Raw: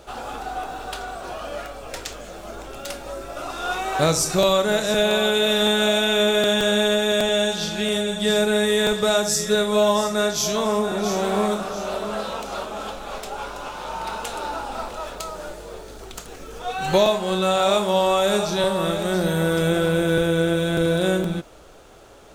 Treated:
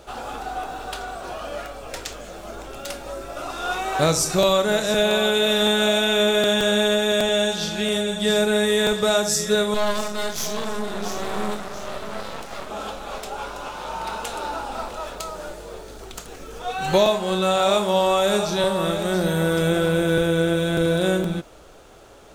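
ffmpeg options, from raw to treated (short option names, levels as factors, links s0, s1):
-filter_complex "[0:a]asettb=1/sr,asplit=3[s0][s1][s2];[s0]atrim=end=9.744[s3];[s1]atrim=start=9.74:end=12.7,asetpts=PTS-STARTPTS,afade=t=in:d=0.004:c=qsin,afade=t=out:st=2.956:d=0.004:c=qsin,aeval=exprs='max(val(0),0)':c=same[s4];[s2]atrim=start=12.696[s5];[s3][s4]acrossfade=d=0.004:c1=hsin:c2=qsin[s6];[s6][s5]acrossfade=d=0.004:c1=qsin:c2=hsin"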